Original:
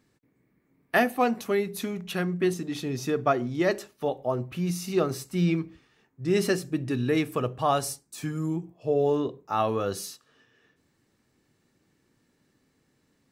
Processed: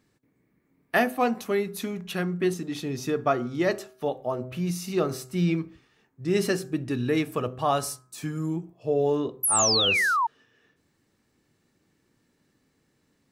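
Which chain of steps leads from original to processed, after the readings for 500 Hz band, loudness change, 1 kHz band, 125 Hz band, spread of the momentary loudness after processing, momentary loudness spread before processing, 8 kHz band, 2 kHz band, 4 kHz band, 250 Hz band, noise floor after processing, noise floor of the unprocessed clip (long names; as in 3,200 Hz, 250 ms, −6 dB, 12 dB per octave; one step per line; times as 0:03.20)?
0.0 dB, +1.5 dB, +1.0 dB, −0.5 dB, 12 LU, 7 LU, +10.0 dB, +4.0 dB, +9.5 dB, 0.0 dB, −71 dBFS, −71 dBFS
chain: hum removal 127.7 Hz, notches 13
sound drawn into the spectrogram fall, 0:09.43–0:10.27, 870–12,000 Hz −23 dBFS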